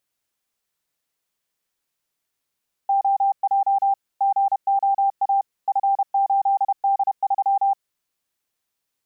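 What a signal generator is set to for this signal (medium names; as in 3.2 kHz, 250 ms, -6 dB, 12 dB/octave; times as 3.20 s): Morse "OJ GOA F8D3" 31 wpm 790 Hz -15.5 dBFS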